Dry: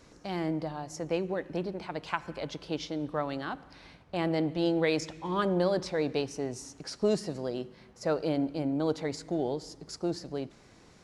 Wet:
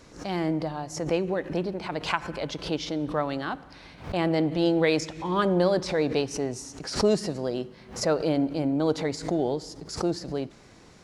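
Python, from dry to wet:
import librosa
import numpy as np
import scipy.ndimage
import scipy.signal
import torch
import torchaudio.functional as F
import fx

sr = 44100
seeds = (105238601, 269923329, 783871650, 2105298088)

y = fx.pre_swell(x, sr, db_per_s=130.0)
y = F.gain(torch.from_numpy(y), 4.5).numpy()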